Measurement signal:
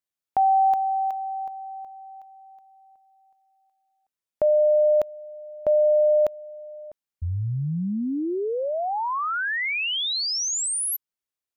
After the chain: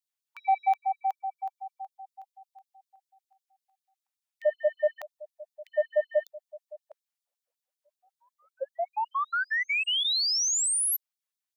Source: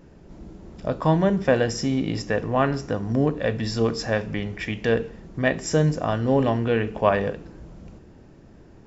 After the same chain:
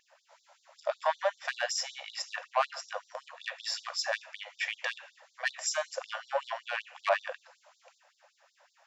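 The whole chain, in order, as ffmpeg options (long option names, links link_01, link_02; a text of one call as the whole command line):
ffmpeg -i in.wav -af "asoftclip=type=tanh:threshold=-15dB,afftfilt=real='re*gte(b*sr/1024,500*pow(3600/500,0.5+0.5*sin(2*PI*5.3*pts/sr)))':imag='im*gte(b*sr/1024,500*pow(3600/500,0.5+0.5*sin(2*PI*5.3*pts/sr)))':win_size=1024:overlap=0.75" out.wav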